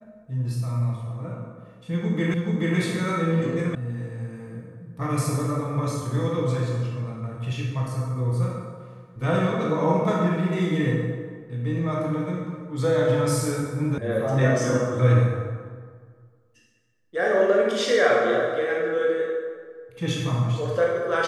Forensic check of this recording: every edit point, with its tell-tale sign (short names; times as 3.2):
2.34 repeat of the last 0.43 s
3.75 sound cut off
13.98 sound cut off